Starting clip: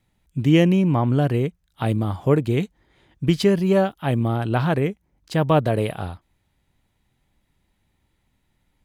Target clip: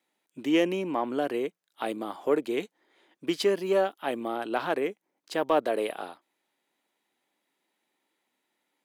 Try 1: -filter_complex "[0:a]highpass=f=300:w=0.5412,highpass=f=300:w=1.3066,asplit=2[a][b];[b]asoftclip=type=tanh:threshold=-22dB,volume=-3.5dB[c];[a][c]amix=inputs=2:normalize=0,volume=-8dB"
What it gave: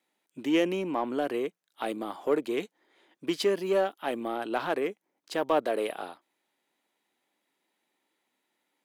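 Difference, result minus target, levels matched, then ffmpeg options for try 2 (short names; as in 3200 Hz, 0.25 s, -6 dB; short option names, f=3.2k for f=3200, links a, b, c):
soft clip: distortion +8 dB
-filter_complex "[0:a]highpass=f=300:w=0.5412,highpass=f=300:w=1.3066,asplit=2[a][b];[b]asoftclip=type=tanh:threshold=-14dB,volume=-3.5dB[c];[a][c]amix=inputs=2:normalize=0,volume=-8dB"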